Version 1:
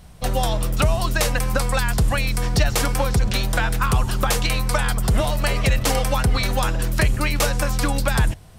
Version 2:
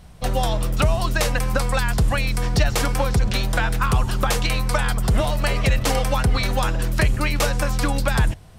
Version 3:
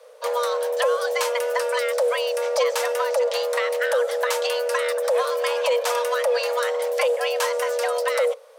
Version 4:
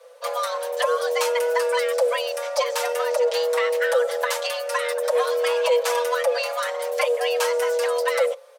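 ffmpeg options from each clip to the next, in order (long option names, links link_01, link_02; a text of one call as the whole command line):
ffmpeg -i in.wav -af "highshelf=frequency=7100:gain=-5" out.wav
ffmpeg -i in.wav -af "afreqshift=440,volume=-3.5dB" out.wav
ffmpeg -i in.wav -filter_complex "[0:a]asplit=2[link_01][link_02];[link_02]adelay=5.5,afreqshift=0.49[link_03];[link_01][link_03]amix=inputs=2:normalize=1,volume=3dB" out.wav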